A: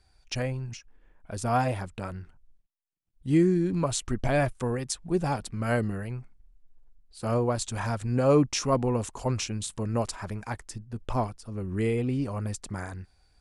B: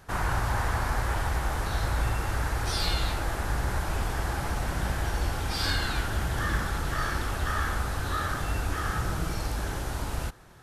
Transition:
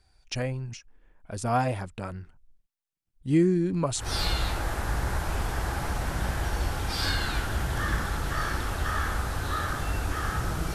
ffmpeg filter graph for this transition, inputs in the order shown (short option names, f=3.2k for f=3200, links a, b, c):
-filter_complex "[0:a]apad=whole_dur=10.74,atrim=end=10.74,atrim=end=4.14,asetpts=PTS-STARTPTS[a];[1:a]atrim=start=2.55:end=9.35,asetpts=PTS-STARTPTS[b];[a][b]acrossfade=d=0.2:c1=tri:c2=tri"